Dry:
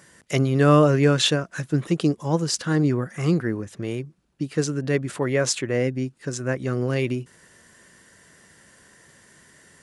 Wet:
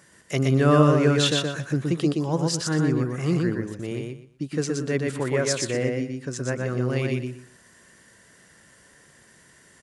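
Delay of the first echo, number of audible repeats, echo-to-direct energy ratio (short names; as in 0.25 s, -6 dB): 0.121 s, 3, -3.0 dB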